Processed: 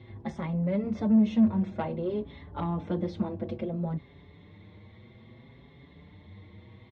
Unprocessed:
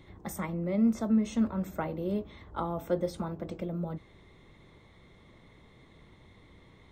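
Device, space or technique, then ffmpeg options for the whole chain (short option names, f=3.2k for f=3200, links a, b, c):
barber-pole flanger into a guitar amplifier: -filter_complex "[0:a]asplit=2[a][b];[b]adelay=5.8,afreqshift=0.58[c];[a][c]amix=inputs=2:normalize=1,asoftclip=type=tanh:threshold=-27dB,highpass=87,equalizer=f=98:t=q:w=4:g=8,equalizer=f=220:t=q:w=4:g=5,equalizer=f=1.3k:t=q:w=4:g=-7,lowpass=f=4.2k:w=0.5412,lowpass=f=4.2k:w=1.3066,lowshelf=f=130:g=6,volume=5dB"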